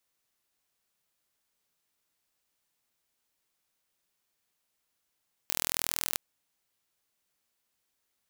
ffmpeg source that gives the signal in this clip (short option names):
-f lavfi -i "aevalsrc='0.75*eq(mod(n,1076),0)':d=0.66:s=44100"